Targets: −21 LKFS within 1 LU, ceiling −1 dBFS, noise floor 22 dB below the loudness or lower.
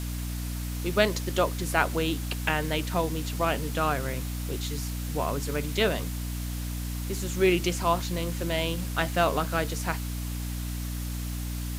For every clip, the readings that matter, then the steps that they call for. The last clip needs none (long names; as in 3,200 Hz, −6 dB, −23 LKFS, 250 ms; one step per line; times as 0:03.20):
mains hum 60 Hz; hum harmonics up to 300 Hz; level of the hum −30 dBFS; background noise floor −33 dBFS; target noise floor −51 dBFS; integrated loudness −29.0 LKFS; sample peak −7.5 dBFS; target loudness −21.0 LKFS
→ mains-hum notches 60/120/180/240/300 Hz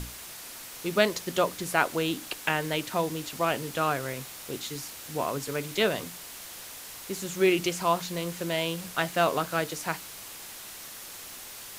mains hum none found; background noise floor −43 dBFS; target noise floor −52 dBFS
→ broadband denoise 9 dB, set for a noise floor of −43 dBFS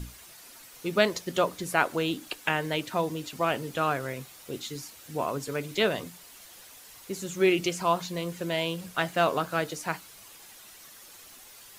background noise floor −50 dBFS; target noise floor −51 dBFS
→ broadband denoise 6 dB, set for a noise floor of −50 dBFS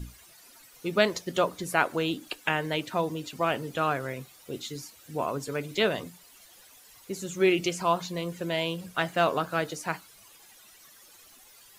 background noise floor −55 dBFS; integrated loudness −29.0 LKFS; sample peak −8.0 dBFS; target loudness −21.0 LKFS
→ level +8 dB
brickwall limiter −1 dBFS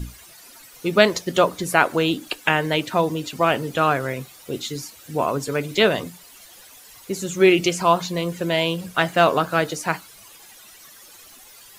integrated loudness −21.0 LKFS; sample peak −1.0 dBFS; background noise floor −47 dBFS